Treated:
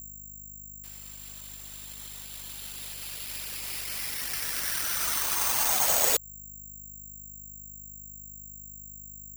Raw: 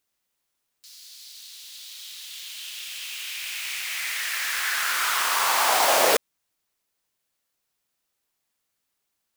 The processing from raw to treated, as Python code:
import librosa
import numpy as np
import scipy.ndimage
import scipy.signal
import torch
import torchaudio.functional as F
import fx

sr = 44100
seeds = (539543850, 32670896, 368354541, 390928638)

y = fx.add_hum(x, sr, base_hz=50, snr_db=11)
y = (np.kron(y[::6], np.eye(6)[0]) * 6)[:len(y)]
y = fx.dereverb_blind(y, sr, rt60_s=0.56)
y = F.gain(torch.from_numpy(y), -11.0).numpy()